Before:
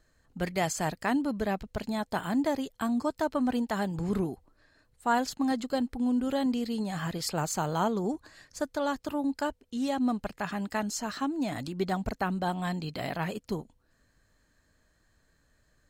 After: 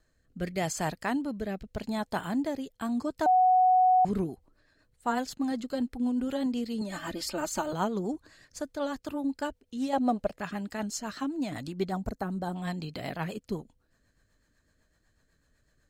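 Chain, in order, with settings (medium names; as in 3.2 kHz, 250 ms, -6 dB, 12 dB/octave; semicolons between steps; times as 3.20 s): 6.81–7.73 s: comb 3.3 ms, depth 92%; 11.91–12.56 s: peaking EQ 2.7 kHz -11.5 dB 1.3 oct; rotary cabinet horn 0.85 Hz, later 8 Hz, at 2.70 s; 3.26–4.05 s: bleep 740 Hz -18 dBFS; 9.93–10.39 s: peaking EQ 620 Hz +13.5 dB 0.8 oct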